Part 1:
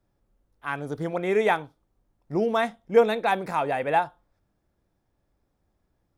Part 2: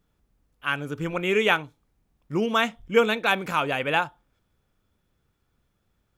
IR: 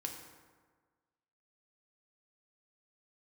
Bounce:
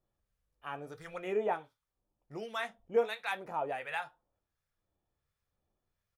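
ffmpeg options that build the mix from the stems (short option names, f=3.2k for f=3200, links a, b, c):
-filter_complex "[0:a]lowshelf=f=310:g=-12,acrossover=split=1100[a][b];[a]aeval=exprs='val(0)*(1-1/2+1/2*cos(2*PI*1.4*n/s))':c=same[c];[b]aeval=exprs='val(0)*(1-1/2-1/2*cos(2*PI*1.4*n/s))':c=same[d];[c][d]amix=inputs=2:normalize=0,volume=-0.5dB,asplit=2[e][f];[1:a]aecho=1:1:1.7:0.87,alimiter=limit=-13.5dB:level=0:latency=1,volume=-14.5dB[g];[f]apad=whole_len=272320[h];[g][h]sidechaincompress=threshold=-35dB:ratio=8:attack=16:release=1460[i];[e][i]amix=inputs=2:normalize=0,flanger=delay=7.8:depth=5.5:regen=-58:speed=0.86:shape=triangular"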